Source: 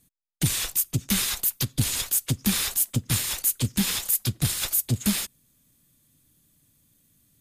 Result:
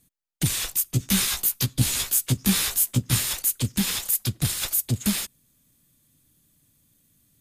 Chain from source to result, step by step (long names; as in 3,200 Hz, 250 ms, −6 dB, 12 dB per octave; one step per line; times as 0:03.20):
0:00.91–0:03.33: double-tracking delay 16 ms −2.5 dB